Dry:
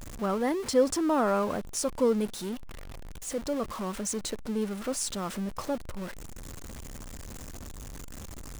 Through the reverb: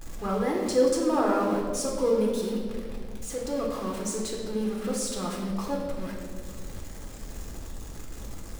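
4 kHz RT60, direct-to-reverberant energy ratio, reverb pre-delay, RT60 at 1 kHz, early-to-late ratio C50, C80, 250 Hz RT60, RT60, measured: 1.3 s, -2.0 dB, 3 ms, 1.4 s, 2.5 dB, 4.5 dB, 2.8 s, 1.8 s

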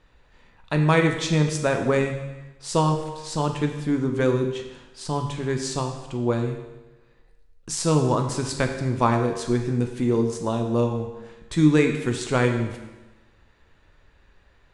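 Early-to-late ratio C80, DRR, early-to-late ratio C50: 8.5 dB, 4.0 dB, 6.5 dB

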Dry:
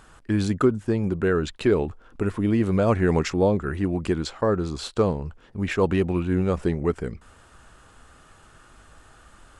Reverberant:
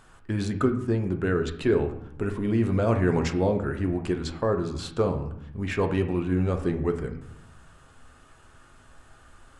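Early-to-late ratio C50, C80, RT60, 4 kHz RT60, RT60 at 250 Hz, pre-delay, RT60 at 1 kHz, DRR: 10.0 dB, 13.0 dB, 0.75 s, 0.55 s, 1.1 s, 7 ms, 0.80 s, 4.5 dB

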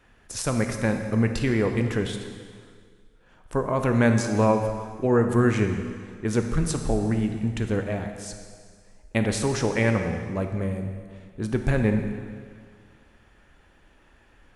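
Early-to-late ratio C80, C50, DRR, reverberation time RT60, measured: 7.5 dB, 6.0 dB, 5.0 dB, 1.9 s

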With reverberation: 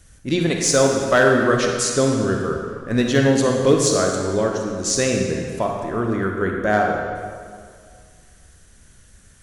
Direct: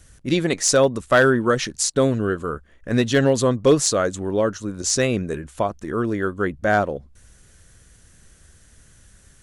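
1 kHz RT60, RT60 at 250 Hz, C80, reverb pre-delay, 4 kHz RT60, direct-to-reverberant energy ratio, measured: 2.1 s, 2.1 s, 3.5 dB, 34 ms, 1.5 s, 1.0 dB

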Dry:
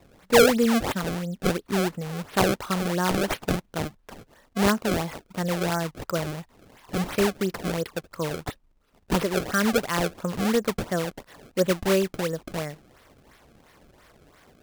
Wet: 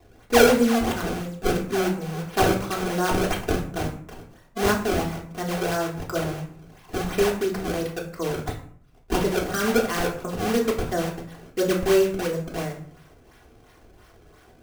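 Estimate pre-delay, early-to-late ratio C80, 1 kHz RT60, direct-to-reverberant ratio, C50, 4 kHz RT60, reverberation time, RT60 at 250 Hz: 3 ms, 12.5 dB, 0.55 s, -2.5 dB, 9.5 dB, 0.35 s, 0.60 s, 0.75 s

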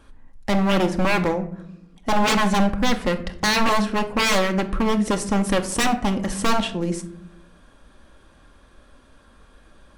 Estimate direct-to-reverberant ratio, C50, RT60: 6.0 dB, 13.5 dB, 0.75 s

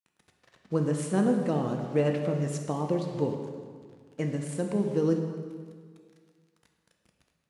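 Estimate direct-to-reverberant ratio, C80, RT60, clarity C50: 2.5 dB, 6.0 dB, 1.8 s, 5.0 dB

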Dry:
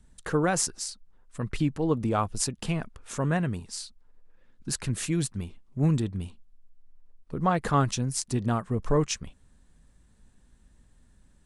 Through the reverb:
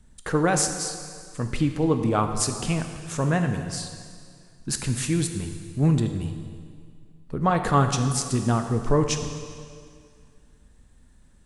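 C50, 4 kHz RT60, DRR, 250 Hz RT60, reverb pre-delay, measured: 7.5 dB, 1.9 s, 6.0 dB, 2.2 s, 6 ms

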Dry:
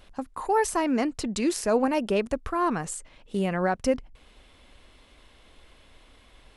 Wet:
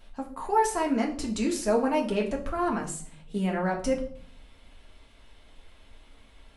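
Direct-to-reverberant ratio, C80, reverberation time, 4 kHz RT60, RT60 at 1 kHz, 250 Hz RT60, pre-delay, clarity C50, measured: -1.0 dB, 14.5 dB, 0.55 s, 0.40 s, 0.45 s, 0.95 s, 3 ms, 10.0 dB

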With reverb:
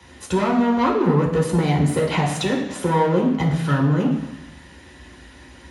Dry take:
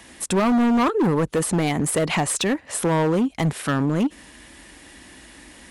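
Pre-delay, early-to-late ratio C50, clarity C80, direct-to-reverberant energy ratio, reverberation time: 3 ms, 5.5 dB, 8.0 dB, -4.5 dB, 1.1 s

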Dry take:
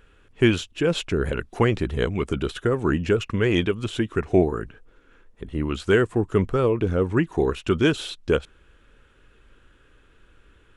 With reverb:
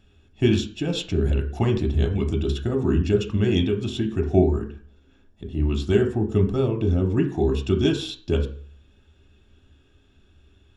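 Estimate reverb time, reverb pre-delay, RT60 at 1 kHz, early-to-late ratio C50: 0.45 s, 3 ms, 0.45 s, 11.5 dB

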